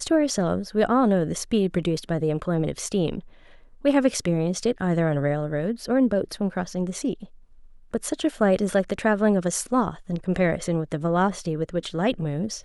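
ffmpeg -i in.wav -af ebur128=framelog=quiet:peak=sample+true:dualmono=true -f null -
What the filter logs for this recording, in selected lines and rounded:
Integrated loudness:
  I:         -21.3 LUFS
  Threshold: -31.6 LUFS
Loudness range:
  LRA:         2.2 LU
  Threshold: -41.8 LUFS
  LRA low:   -22.9 LUFS
  LRA high:  -20.7 LUFS
Sample peak:
  Peak:       -6.8 dBFS
True peak:
  Peak:       -6.8 dBFS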